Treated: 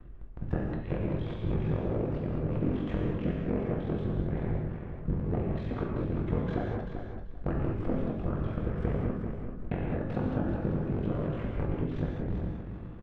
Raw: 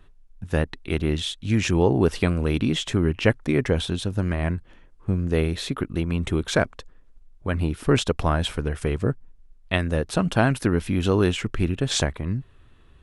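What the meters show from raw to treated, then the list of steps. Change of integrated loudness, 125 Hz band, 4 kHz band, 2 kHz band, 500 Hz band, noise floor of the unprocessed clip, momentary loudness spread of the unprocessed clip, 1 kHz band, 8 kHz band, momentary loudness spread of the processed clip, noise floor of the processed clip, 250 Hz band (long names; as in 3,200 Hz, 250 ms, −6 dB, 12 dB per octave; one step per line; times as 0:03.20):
−8.5 dB, −7.0 dB, below −25 dB, −17.0 dB, −9.5 dB, −52 dBFS, 7 LU, −10.0 dB, below −40 dB, 6 LU, −41 dBFS, −7.5 dB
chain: sub-harmonics by changed cycles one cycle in 3, inverted
de-essing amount 80%
low-pass filter 1,400 Hz 12 dB per octave
downward compressor 16 to 1, threshold −33 dBFS, peak gain reduction 19.5 dB
ring modulation 22 Hz
rotating-speaker cabinet horn 5 Hz, later 0.8 Hz, at 0:05.37
double-tracking delay 19 ms −12 dB
repeating echo 388 ms, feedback 20%, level −8 dB
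reverb whose tail is shaped and stops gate 240 ms flat, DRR −1.5 dB
level +7.5 dB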